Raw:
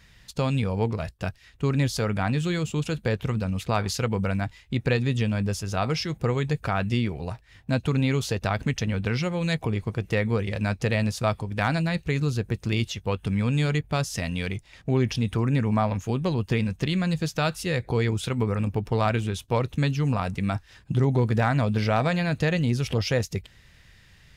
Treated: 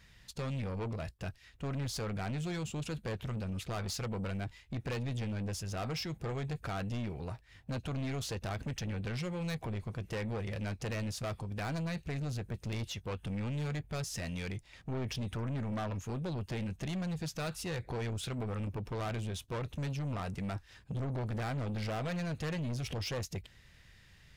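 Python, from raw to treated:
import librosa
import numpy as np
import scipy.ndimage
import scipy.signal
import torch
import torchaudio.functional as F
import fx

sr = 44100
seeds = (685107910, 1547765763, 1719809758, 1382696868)

y = 10.0 ** (-27.5 / 20.0) * np.tanh(x / 10.0 ** (-27.5 / 20.0))
y = F.gain(torch.from_numpy(y), -5.5).numpy()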